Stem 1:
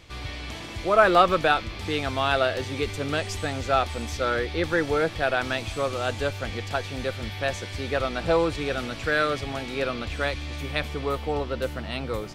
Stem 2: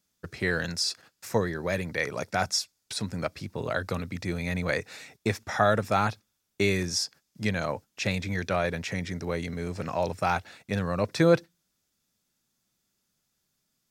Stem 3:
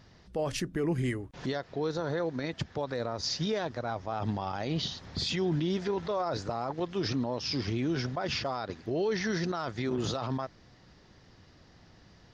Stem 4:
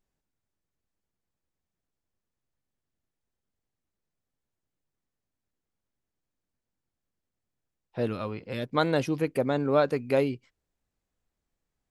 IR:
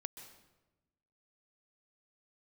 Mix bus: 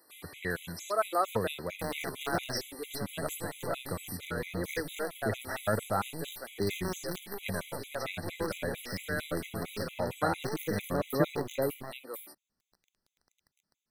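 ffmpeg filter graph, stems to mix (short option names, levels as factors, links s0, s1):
-filter_complex "[0:a]highpass=f=270:w=0.5412,highpass=f=270:w=1.3066,aexciter=amount=10.5:drive=8.7:freq=9100,volume=0.299[s0];[1:a]highshelf=f=6000:g=-8.5,volume=0.531[s1];[2:a]bandreject=f=50:t=h:w=6,bandreject=f=100:t=h:w=6,bandreject=f=150:t=h:w=6,bandreject=f=200:t=h:w=6,bandreject=f=250:t=h:w=6,acontrast=75,acrusher=bits=4:dc=4:mix=0:aa=0.000001,adelay=1450,volume=0.224[s2];[3:a]adelay=1450,volume=0.501[s3];[s0][s1][s2][s3]amix=inputs=4:normalize=0,afftfilt=real='re*gt(sin(2*PI*4.4*pts/sr)*(1-2*mod(floor(b*sr/1024/2000),2)),0)':imag='im*gt(sin(2*PI*4.4*pts/sr)*(1-2*mod(floor(b*sr/1024/2000),2)),0)':win_size=1024:overlap=0.75"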